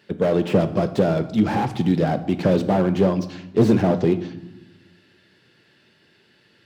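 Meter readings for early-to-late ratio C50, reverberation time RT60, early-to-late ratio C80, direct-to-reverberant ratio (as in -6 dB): 13.5 dB, 1.0 s, 16.5 dB, 10.0 dB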